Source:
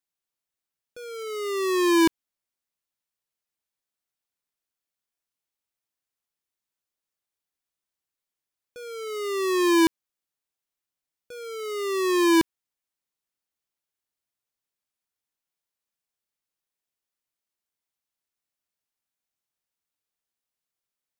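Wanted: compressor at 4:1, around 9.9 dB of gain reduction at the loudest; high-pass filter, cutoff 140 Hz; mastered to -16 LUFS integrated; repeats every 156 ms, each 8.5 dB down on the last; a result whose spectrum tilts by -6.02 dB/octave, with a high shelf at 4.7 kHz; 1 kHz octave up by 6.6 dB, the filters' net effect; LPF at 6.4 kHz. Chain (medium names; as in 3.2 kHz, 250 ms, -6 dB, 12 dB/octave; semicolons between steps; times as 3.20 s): high-pass 140 Hz; low-pass 6.4 kHz; peaking EQ 1 kHz +6.5 dB; treble shelf 4.7 kHz +7.5 dB; compression 4:1, threshold -24 dBFS; feedback delay 156 ms, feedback 38%, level -8.5 dB; trim +12.5 dB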